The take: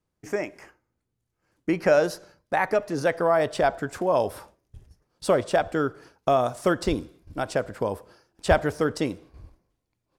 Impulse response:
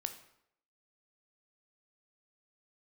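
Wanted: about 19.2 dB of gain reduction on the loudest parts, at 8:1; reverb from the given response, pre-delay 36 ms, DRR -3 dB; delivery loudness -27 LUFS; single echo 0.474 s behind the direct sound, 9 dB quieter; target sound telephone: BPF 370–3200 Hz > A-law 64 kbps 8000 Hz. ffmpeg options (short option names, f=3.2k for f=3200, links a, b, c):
-filter_complex "[0:a]acompressor=threshold=-35dB:ratio=8,aecho=1:1:474:0.355,asplit=2[a][b];[1:a]atrim=start_sample=2205,adelay=36[c];[b][c]afir=irnorm=-1:irlink=0,volume=4dB[d];[a][d]amix=inputs=2:normalize=0,highpass=370,lowpass=3.2k,volume=10.5dB" -ar 8000 -c:a pcm_alaw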